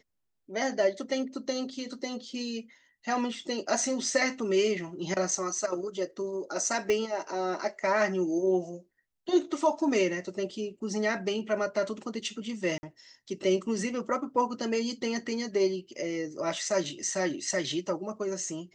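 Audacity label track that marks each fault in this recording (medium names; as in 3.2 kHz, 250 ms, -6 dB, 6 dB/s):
6.900000	6.900000	pop -17 dBFS
12.780000	12.830000	dropout 50 ms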